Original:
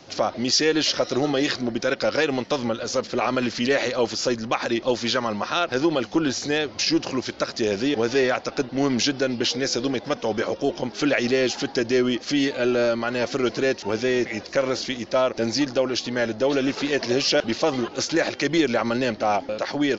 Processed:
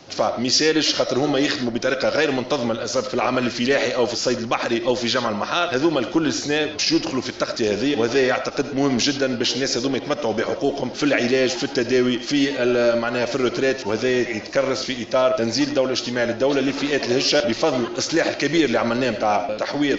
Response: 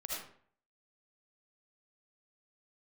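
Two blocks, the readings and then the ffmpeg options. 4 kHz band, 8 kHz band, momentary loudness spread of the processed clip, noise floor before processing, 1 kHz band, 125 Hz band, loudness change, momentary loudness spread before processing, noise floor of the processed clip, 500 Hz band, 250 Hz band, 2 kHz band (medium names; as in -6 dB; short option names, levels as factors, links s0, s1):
+2.5 dB, no reading, 5 LU, -41 dBFS, +2.5 dB, +2.5 dB, +2.5 dB, 4 LU, -32 dBFS, +2.5 dB, +2.5 dB, +2.5 dB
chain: -filter_complex "[0:a]asplit=2[s0][s1];[1:a]atrim=start_sample=2205,afade=t=out:st=0.18:d=0.01,atrim=end_sample=8379[s2];[s1][s2]afir=irnorm=-1:irlink=0,volume=0.501[s3];[s0][s3]amix=inputs=2:normalize=0"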